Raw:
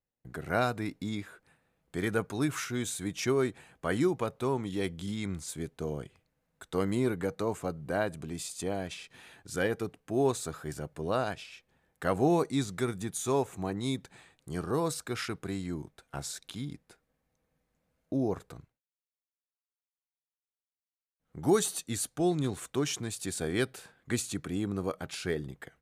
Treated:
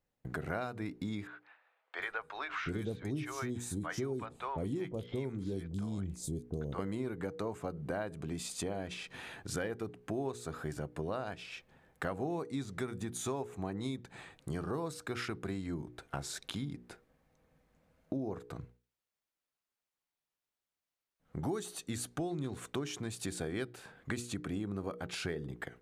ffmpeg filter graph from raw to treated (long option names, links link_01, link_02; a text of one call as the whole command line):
ffmpeg -i in.wav -filter_complex "[0:a]asettb=1/sr,asplit=3[link_01][link_02][link_03];[link_01]atrim=end=1.274[link_04];[link_02]atrim=start=1.27:end=6.79,asetpts=PTS-STARTPTS,afade=type=in:duration=0.004:curve=qsin,afade=type=out:start_time=5.516:duration=0.004:curve=qsin,lowshelf=frequency=100:gain=9,acrossover=split=670|4100[link_05][link_06][link_07];[link_05]adelay=720[link_08];[link_07]adelay=750[link_09];[link_08][link_06][link_09]amix=inputs=3:normalize=0,atrim=end_sample=243432[link_10];[link_03]atrim=start=6.786[link_11];[link_04][link_10]acrossfade=duration=0.004:curve1=hsin:curve2=qsin[link_12];[link_12][link_11]acrossfade=duration=0.004:curve1=qsin:curve2=hsin,highshelf=frequency=4200:gain=-8.5,bandreject=frequency=60:width_type=h:width=6,bandreject=frequency=120:width_type=h:width=6,bandreject=frequency=180:width_type=h:width=6,bandreject=frequency=240:width_type=h:width=6,bandreject=frequency=300:width_type=h:width=6,bandreject=frequency=360:width_type=h:width=6,bandreject=frequency=420:width_type=h:width=6,bandreject=frequency=480:width_type=h:width=6,acompressor=threshold=-44dB:ratio=5,volume=8dB" out.wav